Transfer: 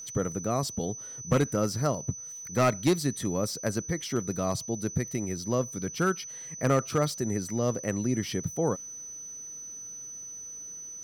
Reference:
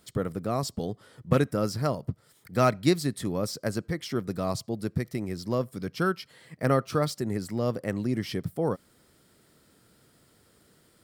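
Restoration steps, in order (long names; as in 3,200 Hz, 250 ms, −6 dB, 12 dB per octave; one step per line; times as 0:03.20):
clipped peaks rebuilt −17 dBFS
notch filter 6,000 Hz, Q 30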